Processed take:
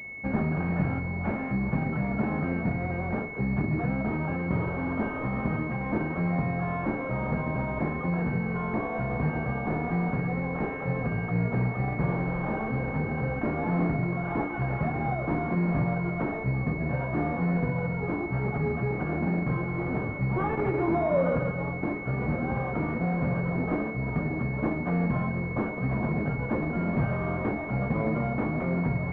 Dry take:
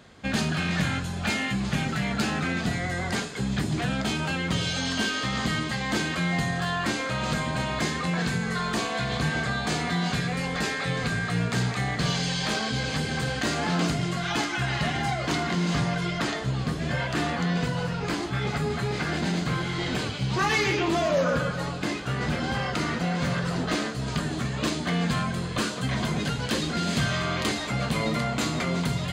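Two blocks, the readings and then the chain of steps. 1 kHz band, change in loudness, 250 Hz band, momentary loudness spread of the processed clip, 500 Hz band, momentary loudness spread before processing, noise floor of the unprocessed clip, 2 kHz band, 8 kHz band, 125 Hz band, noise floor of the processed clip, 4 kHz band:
−2.5 dB, −2.0 dB, 0.0 dB, 3 LU, 0.0 dB, 3 LU, −32 dBFS, −5.5 dB, below −40 dB, 0.0 dB, −33 dBFS, below −30 dB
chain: switching amplifier with a slow clock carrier 2,200 Hz

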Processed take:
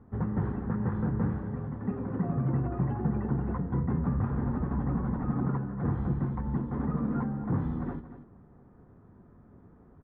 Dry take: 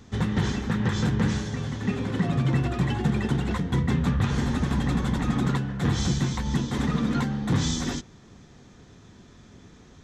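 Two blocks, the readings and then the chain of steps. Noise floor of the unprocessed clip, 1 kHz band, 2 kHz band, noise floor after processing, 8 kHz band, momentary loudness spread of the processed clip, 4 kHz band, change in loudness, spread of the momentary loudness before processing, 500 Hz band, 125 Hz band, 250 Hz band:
−51 dBFS, −5.5 dB, −15.0 dB, −56 dBFS, below −40 dB, 5 LU, below −35 dB, −5.0 dB, 4 LU, −5.0 dB, −5.0 dB, −4.5 dB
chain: low-pass filter 1,300 Hz 24 dB per octave
single-tap delay 234 ms −12.5 dB
level −5 dB

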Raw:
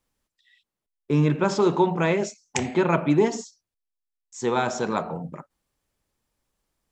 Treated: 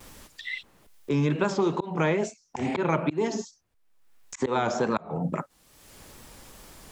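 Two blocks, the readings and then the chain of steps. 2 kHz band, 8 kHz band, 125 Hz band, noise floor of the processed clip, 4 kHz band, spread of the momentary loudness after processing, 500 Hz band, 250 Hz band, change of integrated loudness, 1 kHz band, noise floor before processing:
−2.0 dB, −5.5 dB, −3.5 dB, −66 dBFS, −2.5 dB, 22 LU, −4.0 dB, −3.5 dB, −4.5 dB, −3.0 dB, below −85 dBFS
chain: pitch vibrato 2.3 Hz 83 cents
volume swells 275 ms
multiband upward and downward compressor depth 100%

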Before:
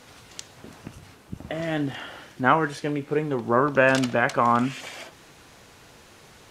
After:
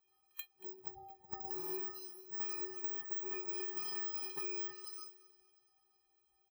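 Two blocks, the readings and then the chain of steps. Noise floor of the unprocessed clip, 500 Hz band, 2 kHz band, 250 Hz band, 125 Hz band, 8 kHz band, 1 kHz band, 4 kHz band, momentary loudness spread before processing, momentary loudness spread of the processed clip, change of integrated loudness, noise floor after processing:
−51 dBFS, −23.5 dB, −26.0 dB, −26.5 dB, −32.5 dB, −9.5 dB, −27.5 dB, −13.0 dB, 22 LU, 11 LU, −16.5 dB, −77 dBFS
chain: samples in bit-reversed order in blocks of 64 samples
parametric band 900 Hz +14 dB 0.61 octaves
stiff-string resonator 370 Hz, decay 0.41 s, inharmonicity 0.03
brickwall limiter −30 dBFS, peak gain reduction 10 dB
echo ahead of the sound 85 ms −13.5 dB
noise reduction from a noise print of the clip's start 22 dB
downward compressor 10 to 1, threshold −49 dBFS, peak gain reduction 14.5 dB
high-pass filter 58 Hz
repeating echo 231 ms, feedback 49%, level −17.5 dB
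level +11 dB

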